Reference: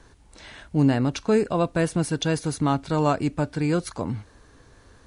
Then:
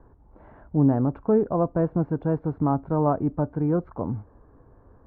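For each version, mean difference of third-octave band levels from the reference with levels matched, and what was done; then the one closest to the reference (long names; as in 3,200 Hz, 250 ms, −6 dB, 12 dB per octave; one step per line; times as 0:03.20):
7.5 dB: low-pass filter 1,100 Hz 24 dB per octave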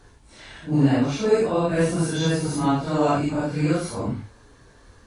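4.0 dB: random phases in long frames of 200 ms
level +1.5 dB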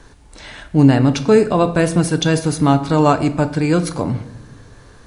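2.5 dB: rectangular room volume 330 cubic metres, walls mixed, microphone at 0.37 metres
level +7.5 dB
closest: third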